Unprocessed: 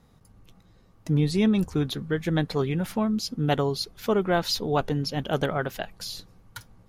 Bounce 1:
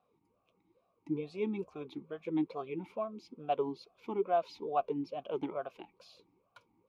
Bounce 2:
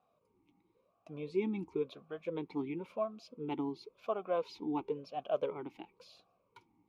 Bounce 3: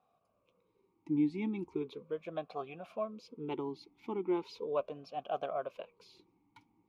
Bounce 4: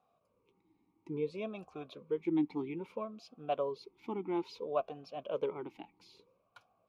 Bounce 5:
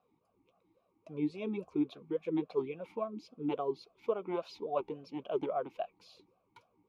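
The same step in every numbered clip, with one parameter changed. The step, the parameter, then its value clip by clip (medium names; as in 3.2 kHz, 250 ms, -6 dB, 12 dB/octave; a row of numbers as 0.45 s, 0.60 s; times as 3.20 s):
talking filter, rate: 2.3 Hz, 0.96 Hz, 0.38 Hz, 0.6 Hz, 3.6 Hz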